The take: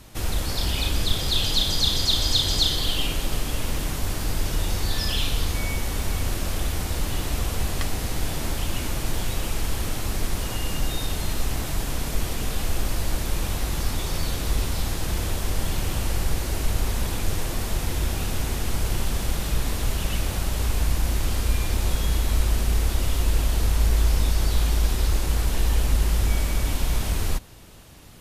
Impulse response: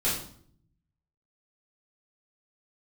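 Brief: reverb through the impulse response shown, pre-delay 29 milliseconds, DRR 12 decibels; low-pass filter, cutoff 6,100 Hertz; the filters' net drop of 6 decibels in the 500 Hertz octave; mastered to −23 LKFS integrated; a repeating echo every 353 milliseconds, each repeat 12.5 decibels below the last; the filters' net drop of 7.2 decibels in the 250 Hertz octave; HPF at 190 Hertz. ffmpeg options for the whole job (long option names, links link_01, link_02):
-filter_complex "[0:a]highpass=190,lowpass=6100,equalizer=frequency=250:width_type=o:gain=-5.5,equalizer=frequency=500:width_type=o:gain=-6,aecho=1:1:353|706|1059:0.237|0.0569|0.0137,asplit=2[link_01][link_02];[1:a]atrim=start_sample=2205,adelay=29[link_03];[link_02][link_03]afir=irnorm=-1:irlink=0,volume=-22dB[link_04];[link_01][link_04]amix=inputs=2:normalize=0,volume=7.5dB"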